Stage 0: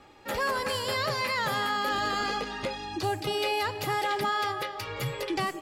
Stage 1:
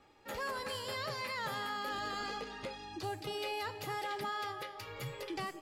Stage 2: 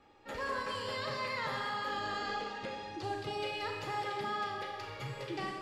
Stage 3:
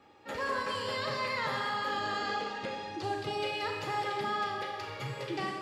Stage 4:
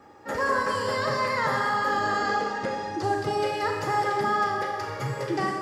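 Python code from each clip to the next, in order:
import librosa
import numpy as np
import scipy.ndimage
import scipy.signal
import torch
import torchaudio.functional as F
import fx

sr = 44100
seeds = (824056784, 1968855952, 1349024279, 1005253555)

y1 = fx.comb_fb(x, sr, f0_hz=450.0, decay_s=0.53, harmonics='all', damping=0.0, mix_pct=70)
y2 = fx.air_absorb(y1, sr, metres=69.0)
y2 = fx.rev_schroeder(y2, sr, rt60_s=1.5, comb_ms=29, drr_db=1.0)
y3 = scipy.signal.sosfilt(scipy.signal.butter(2, 83.0, 'highpass', fs=sr, output='sos'), y2)
y3 = F.gain(torch.from_numpy(y3), 3.5).numpy()
y4 = fx.band_shelf(y3, sr, hz=3100.0, db=-10.0, octaves=1.1)
y4 = F.gain(torch.from_numpy(y4), 8.5).numpy()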